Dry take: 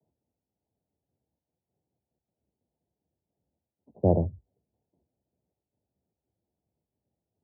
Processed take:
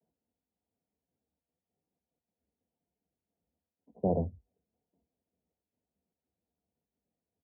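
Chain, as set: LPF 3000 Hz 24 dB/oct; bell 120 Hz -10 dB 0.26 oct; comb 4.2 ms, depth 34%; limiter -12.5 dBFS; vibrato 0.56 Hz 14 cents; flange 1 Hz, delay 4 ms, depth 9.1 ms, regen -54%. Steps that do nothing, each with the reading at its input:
LPF 3000 Hz: input band ends at 850 Hz

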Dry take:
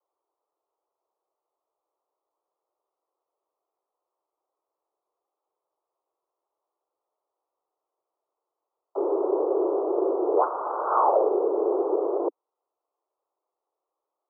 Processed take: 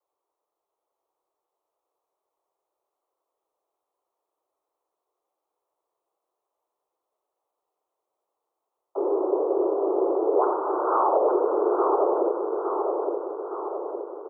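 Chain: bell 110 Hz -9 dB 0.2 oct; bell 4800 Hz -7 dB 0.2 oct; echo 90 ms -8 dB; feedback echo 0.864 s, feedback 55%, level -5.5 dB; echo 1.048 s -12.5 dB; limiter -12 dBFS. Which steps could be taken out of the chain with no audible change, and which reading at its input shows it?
bell 110 Hz: input band starts at 270 Hz; bell 4800 Hz: input band ends at 1400 Hz

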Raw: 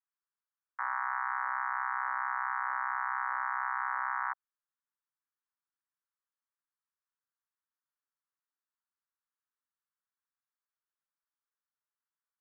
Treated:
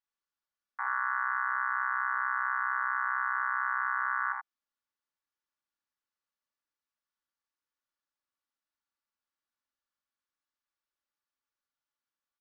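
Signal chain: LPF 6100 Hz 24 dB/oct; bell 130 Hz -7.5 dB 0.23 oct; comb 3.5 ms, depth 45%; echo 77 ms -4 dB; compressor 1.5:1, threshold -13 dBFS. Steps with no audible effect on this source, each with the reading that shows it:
LPF 6100 Hz: input band ends at 2300 Hz; bell 130 Hz: input band starts at 680 Hz; compressor, threshold -13 dBFS: input peak -20.5 dBFS

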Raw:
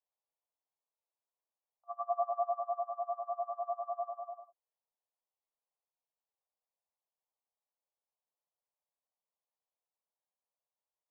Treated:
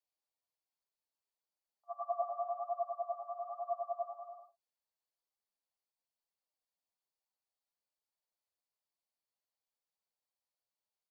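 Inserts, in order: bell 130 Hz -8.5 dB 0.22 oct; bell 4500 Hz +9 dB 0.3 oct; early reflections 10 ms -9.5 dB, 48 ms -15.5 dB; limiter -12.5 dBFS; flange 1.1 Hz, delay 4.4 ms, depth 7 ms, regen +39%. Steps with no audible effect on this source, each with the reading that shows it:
bell 130 Hz: input band starts at 540 Hz; bell 4500 Hz: input band ends at 1200 Hz; limiter -12.5 dBFS: input peak -20.5 dBFS

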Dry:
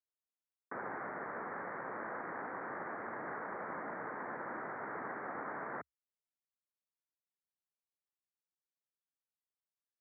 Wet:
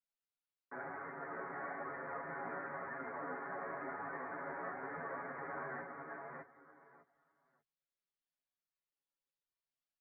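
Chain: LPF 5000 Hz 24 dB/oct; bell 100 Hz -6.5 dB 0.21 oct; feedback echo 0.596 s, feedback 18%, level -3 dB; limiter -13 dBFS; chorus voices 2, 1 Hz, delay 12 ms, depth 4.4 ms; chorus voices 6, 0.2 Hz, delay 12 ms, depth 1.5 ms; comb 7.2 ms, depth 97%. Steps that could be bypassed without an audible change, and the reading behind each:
LPF 5000 Hz: input band ends at 2400 Hz; limiter -13 dBFS: input peak -28.5 dBFS

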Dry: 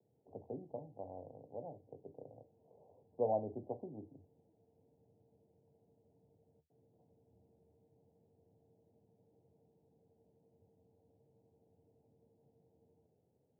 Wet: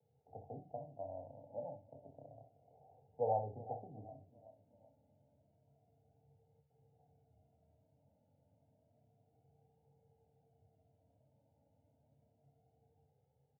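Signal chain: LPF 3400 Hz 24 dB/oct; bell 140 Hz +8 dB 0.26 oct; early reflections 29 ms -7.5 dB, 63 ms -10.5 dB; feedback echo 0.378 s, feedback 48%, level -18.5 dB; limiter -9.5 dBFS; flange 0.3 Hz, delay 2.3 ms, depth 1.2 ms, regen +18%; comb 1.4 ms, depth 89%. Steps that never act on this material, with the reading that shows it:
LPF 3400 Hz: input band ends at 1000 Hz; limiter -9.5 dBFS: input peak -21.5 dBFS

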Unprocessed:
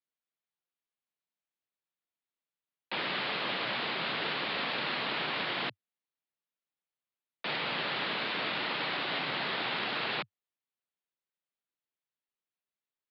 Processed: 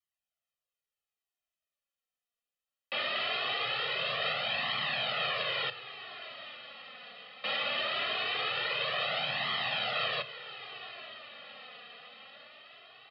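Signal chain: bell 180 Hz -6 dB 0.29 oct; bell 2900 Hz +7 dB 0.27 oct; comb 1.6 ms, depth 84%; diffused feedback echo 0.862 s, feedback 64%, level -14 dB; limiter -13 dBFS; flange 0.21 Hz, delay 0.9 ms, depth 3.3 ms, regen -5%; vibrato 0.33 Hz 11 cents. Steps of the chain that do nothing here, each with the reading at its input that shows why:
limiter -13 dBFS: input peak -16.0 dBFS

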